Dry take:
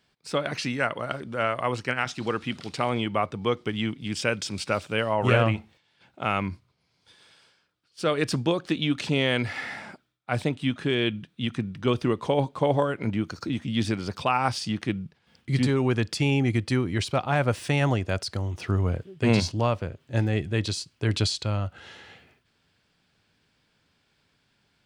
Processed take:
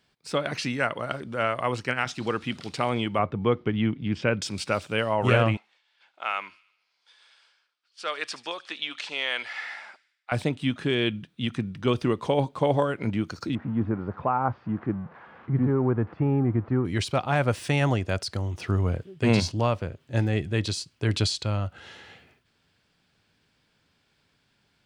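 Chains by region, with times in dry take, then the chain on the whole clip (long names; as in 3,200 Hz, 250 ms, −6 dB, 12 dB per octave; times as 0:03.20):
0:03.19–0:04.42: low-pass filter 2,500 Hz + low-shelf EQ 370 Hz +5.5 dB
0:05.57–0:10.32: high-pass filter 930 Hz + high-frequency loss of the air 61 metres + delay with a high-pass on its return 75 ms, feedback 56%, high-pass 3,200 Hz, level −14 dB
0:13.55–0:16.85: spike at every zero crossing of −18 dBFS + low-pass filter 1,300 Hz 24 dB per octave
whole clip: no processing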